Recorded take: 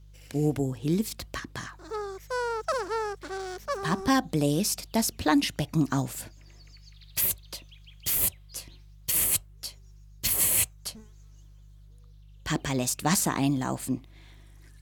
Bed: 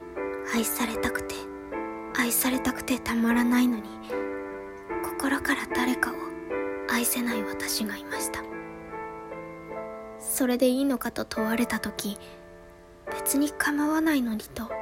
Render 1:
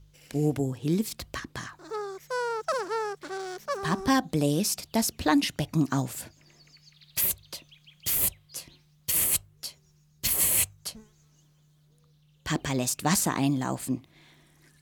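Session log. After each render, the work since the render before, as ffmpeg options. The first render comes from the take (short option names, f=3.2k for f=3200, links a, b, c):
-af "bandreject=f=50:t=h:w=4,bandreject=f=100:t=h:w=4"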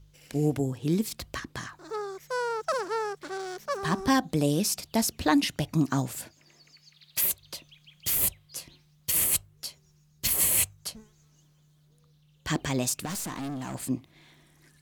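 -filter_complex "[0:a]asettb=1/sr,asplit=3[a][b][c];[a]atrim=end=6.224[d];[b]atrim=start=6.22:end=7.42,asetpts=PTS-STARTPTS,afade=t=in:d=0.004:c=qsin,afade=t=out:st=1.196:d=0.004:c=qsin,lowshelf=f=130:g=-11[e];[c]atrim=start=7.416[f];[d][e]acrossfade=d=0.004:c1=hsin:c2=qsin[g];[g][f]acrossfade=d=0.004:c1=qsin:c2=hsin,asettb=1/sr,asplit=3[h][i][j];[h]atrim=end=13.054[k];[i]atrim=start=13.05:end=13.75,asetpts=PTS-STARTPTS,afade=t=in:d=0.004:c=qsin,afade=t=out:st=0.696:d=0.004:c=qsin,aeval=exprs='(tanh(39.8*val(0)+0.25)-tanh(0.25))/39.8':c=same[l];[j]atrim=start=13.746[m];[k][l]acrossfade=d=0.004:c1=hsin:c2=qsin[n];[n][m]acrossfade=d=0.004:c1=qsin:c2=hsin"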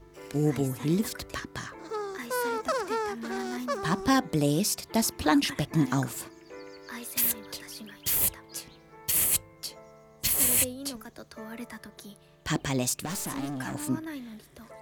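-filter_complex "[1:a]volume=-14.5dB[a];[0:a][a]amix=inputs=2:normalize=0"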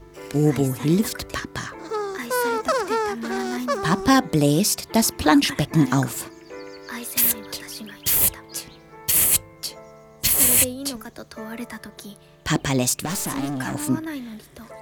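-af "volume=7dB"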